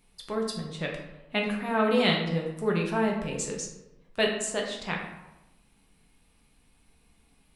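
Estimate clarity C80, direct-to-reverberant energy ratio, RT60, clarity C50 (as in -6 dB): 7.0 dB, -1.5 dB, 1.0 s, 4.5 dB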